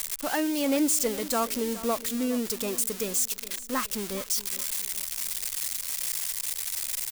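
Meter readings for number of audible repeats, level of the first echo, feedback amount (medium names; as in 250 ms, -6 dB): 3, -16.5 dB, 40%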